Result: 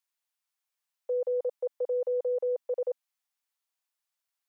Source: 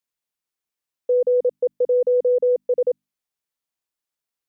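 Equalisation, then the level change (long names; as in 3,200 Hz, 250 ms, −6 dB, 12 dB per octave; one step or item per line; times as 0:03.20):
high-pass filter 670 Hz 24 dB per octave
0.0 dB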